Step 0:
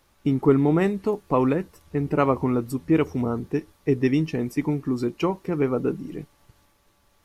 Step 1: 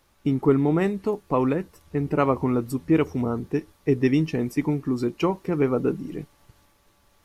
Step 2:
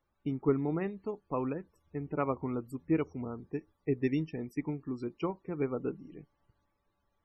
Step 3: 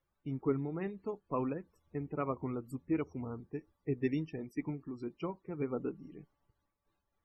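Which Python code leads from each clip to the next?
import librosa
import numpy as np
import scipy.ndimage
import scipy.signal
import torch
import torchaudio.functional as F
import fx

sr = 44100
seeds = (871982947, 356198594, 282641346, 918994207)

y1 = fx.rider(x, sr, range_db=10, speed_s=2.0)
y1 = F.gain(torch.from_numpy(y1), -1.0).numpy()
y2 = fx.spec_topn(y1, sr, count=64)
y2 = fx.upward_expand(y2, sr, threshold_db=-29.0, expansion=1.5)
y2 = F.gain(torch.from_numpy(y2), -8.0).numpy()
y3 = fx.spec_quant(y2, sr, step_db=15)
y3 = fx.am_noise(y3, sr, seeds[0], hz=5.7, depth_pct=65)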